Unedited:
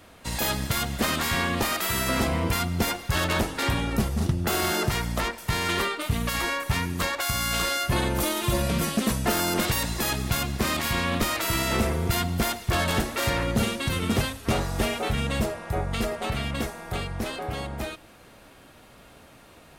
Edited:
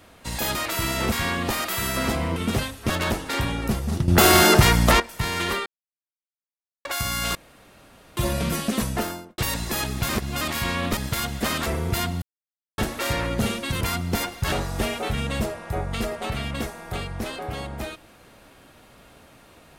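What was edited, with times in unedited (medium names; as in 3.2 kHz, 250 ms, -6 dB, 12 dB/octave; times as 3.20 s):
0.55–1.24 s: swap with 11.26–11.83 s
2.48–3.19 s: swap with 13.98–14.52 s
4.37–5.29 s: gain +10.5 dB
5.95–7.14 s: mute
7.64–8.46 s: room tone
9.17–9.67 s: studio fade out
10.38–10.70 s: reverse
12.39–12.95 s: mute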